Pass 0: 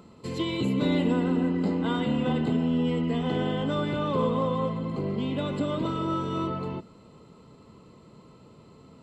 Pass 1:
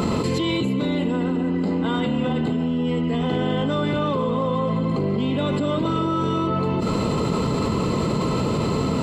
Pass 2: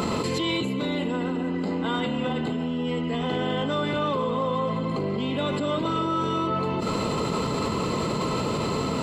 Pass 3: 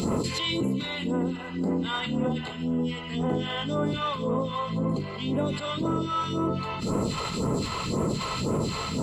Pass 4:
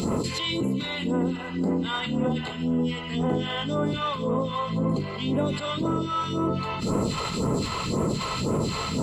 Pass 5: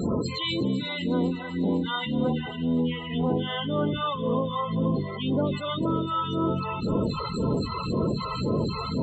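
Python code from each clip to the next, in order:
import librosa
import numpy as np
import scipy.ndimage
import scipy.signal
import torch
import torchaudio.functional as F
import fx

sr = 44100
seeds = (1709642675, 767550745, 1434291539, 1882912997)

y1 = fx.env_flatten(x, sr, amount_pct=100)
y2 = fx.low_shelf(y1, sr, hz=380.0, db=-7.5)
y3 = fx.phaser_stages(y2, sr, stages=2, low_hz=230.0, high_hz=3600.0, hz=1.9, feedback_pct=40)
y4 = fx.rider(y3, sr, range_db=10, speed_s=0.5)
y4 = F.gain(torch.from_numpy(y4), 1.5).numpy()
y5 = fx.spec_topn(y4, sr, count=32)
y5 = fx.echo_wet_highpass(y5, sr, ms=251, feedback_pct=75, hz=4600.0, wet_db=-10.0)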